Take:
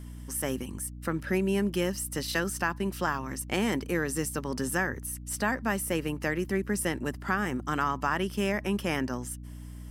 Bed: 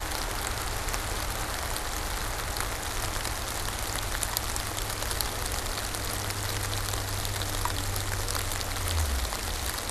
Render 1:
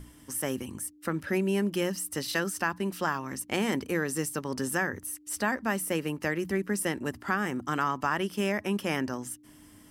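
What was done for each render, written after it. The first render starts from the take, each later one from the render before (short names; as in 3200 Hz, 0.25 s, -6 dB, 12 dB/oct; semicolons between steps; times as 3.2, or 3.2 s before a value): notches 60/120/180/240 Hz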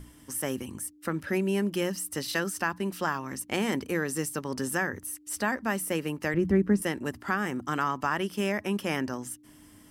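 6.34–6.82 tilt -3.5 dB/oct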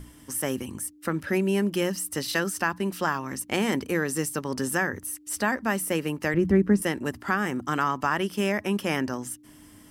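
gain +3 dB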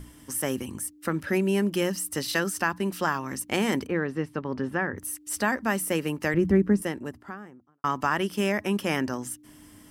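3.87–4.98 air absorption 360 m; 6.38–7.84 studio fade out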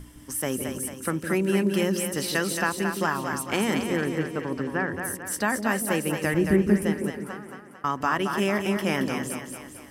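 split-band echo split 490 Hz, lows 0.159 s, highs 0.223 s, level -5.5 dB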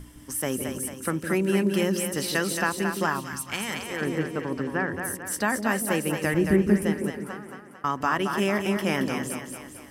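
3.19–4 bell 700 Hz -> 200 Hz -14 dB 2.1 oct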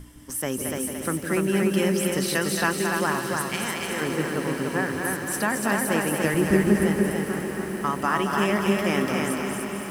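on a send: diffused feedback echo 1.091 s, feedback 65%, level -11.5 dB; on the sum: lo-fi delay 0.292 s, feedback 35%, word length 8-bit, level -3 dB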